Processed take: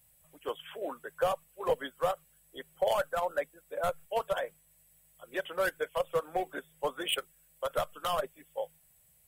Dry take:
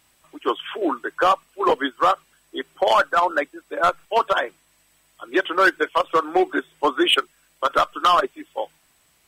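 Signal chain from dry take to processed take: FFT filter 160 Hz 0 dB, 330 Hz -22 dB, 510 Hz -4 dB, 1.2 kHz -18 dB, 1.8 kHz -12 dB, 5.5 kHz -13 dB, 11 kHz +4 dB; trim -1.5 dB

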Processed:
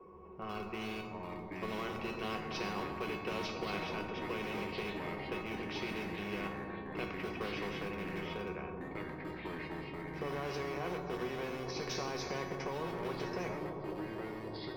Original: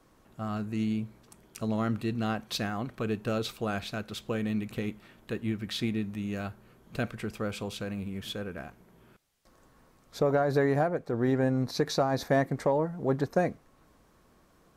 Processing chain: level-controlled noise filter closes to 1.2 kHz, open at -21.5 dBFS; rippled EQ curve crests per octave 0.8, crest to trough 13 dB; in parallel at -11 dB: Schmitt trigger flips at -27.5 dBFS; on the sum: peak limiter -21 dBFS, peak gain reduction 10 dB; feedback comb 370 Hz, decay 0.24 s, harmonics all, mix 90%; bucket-brigade echo 274 ms, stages 2048, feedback 71%, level -11 dB; dynamic bell 370 Hz, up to -7 dB, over -48 dBFS; reverberation RT60 1.1 s, pre-delay 3 ms, DRR 9.5 dB; ever faster or slower copies 644 ms, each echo -3 st, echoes 2, each echo -6 dB; spectrum-flattening compressor 2:1; trim -6 dB

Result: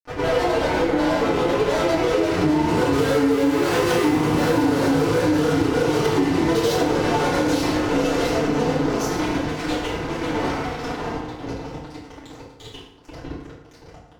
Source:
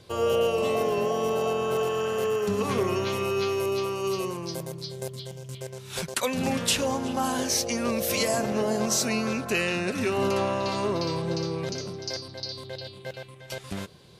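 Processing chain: Doppler pass-by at 3.90 s, 16 m/s, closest 1.7 m; de-hum 74.28 Hz, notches 5; added noise brown -67 dBFS; tilt EQ -2.5 dB/octave; echo that smears into a reverb 609 ms, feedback 72%, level -12 dB; granulator 100 ms, grains 20 per s, pitch spread up and down by 7 st; upward compressor, threshold -54 dBFS; elliptic low-pass 6.5 kHz; bass shelf 170 Hz -10.5 dB; fuzz box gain 55 dB, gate -59 dBFS; FDN reverb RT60 0.93 s, low-frequency decay 1×, high-frequency decay 0.65×, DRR -9 dB; compression 6:1, threshold -8 dBFS, peak gain reduction 11.5 dB; trim -8 dB

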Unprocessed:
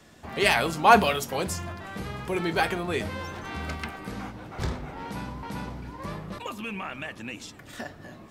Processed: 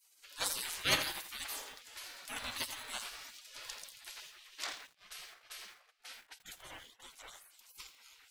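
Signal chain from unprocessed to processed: 4.87–7.00 s: gate -35 dBFS, range -21 dB; spectral gate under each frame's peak -25 dB weak; bit-crushed delay 84 ms, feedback 35%, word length 9-bit, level -10 dB; trim +2.5 dB

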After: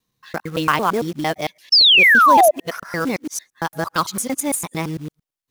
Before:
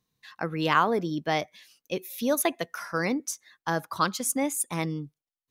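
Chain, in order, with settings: time reversed locally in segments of 113 ms; short-mantissa float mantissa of 2-bit; painted sound fall, 1.72–2.51 s, 580–5500 Hz -16 dBFS; trim +5 dB

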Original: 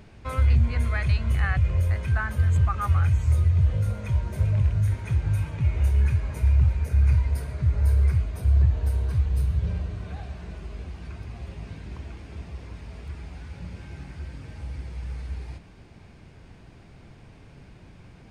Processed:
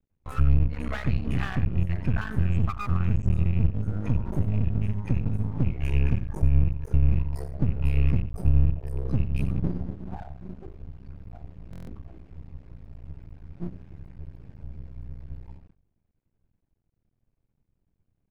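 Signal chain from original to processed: rattle on loud lows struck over -19 dBFS, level -24 dBFS; spectral noise reduction 19 dB; dynamic bell 1.2 kHz, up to +5 dB, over -49 dBFS, Q 3.5; compression 16:1, threshold -33 dBFS, peak gain reduction 19 dB; tilt EQ -3 dB/octave; delay 88 ms -11.5 dB; gate with hold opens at -45 dBFS; hum notches 50/100 Hz; half-wave rectifier; buffer glitch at 11.71 s, samples 1024, times 6; trim +7.5 dB

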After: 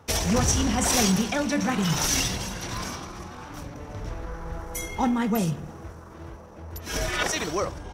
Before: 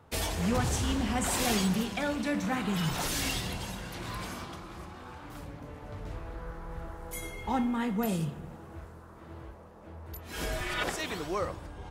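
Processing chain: peaking EQ 5.8 kHz +13 dB 0.23 oct; tempo 1.5×; trim +6 dB

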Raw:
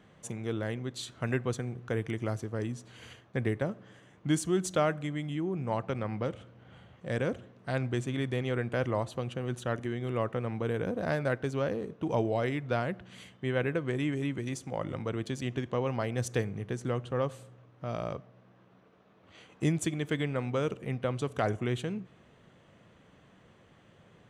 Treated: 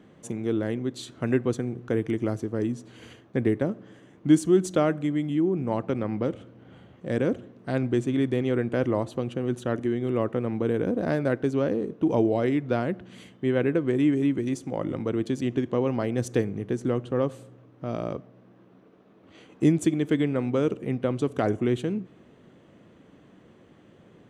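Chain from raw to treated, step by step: peaking EQ 300 Hz +11 dB 1.4 oct

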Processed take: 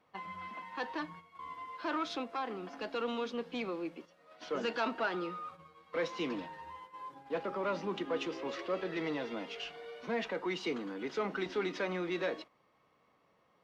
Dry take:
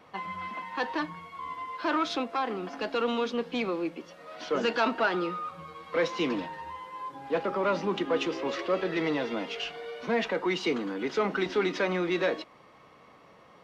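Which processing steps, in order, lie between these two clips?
gate -42 dBFS, range -8 dB; trim -7.5 dB

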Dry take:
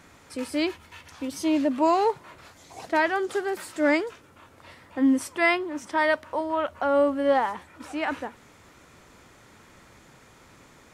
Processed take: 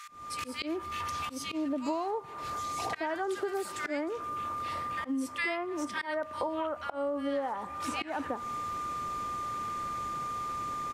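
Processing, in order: whistle 1.2 kHz -41 dBFS; bands offset in time highs, lows 80 ms, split 1.6 kHz; slow attack 406 ms; on a send at -21.5 dB: reverberation RT60 0.90 s, pre-delay 15 ms; on the sum: compression 10:1, threshold -38 dBFS, peak gain reduction 21 dB; trim +8 dB

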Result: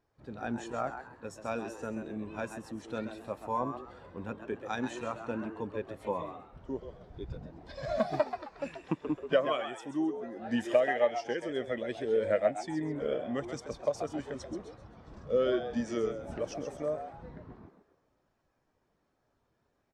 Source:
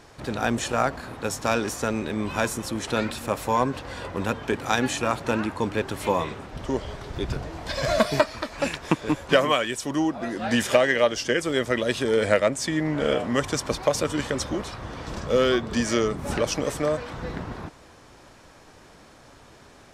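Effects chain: frequency-shifting echo 132 ms, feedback 43%, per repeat +110 Hz, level -6.5 dB; spectral contrast expander 1.5:1; trim -8.5 dB

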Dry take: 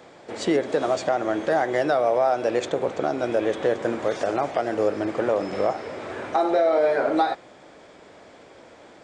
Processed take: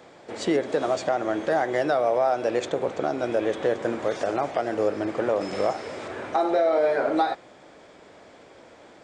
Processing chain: 5.41–6.08 s: treble shelf 4 kHz +9 dB; trim -1.5 dB

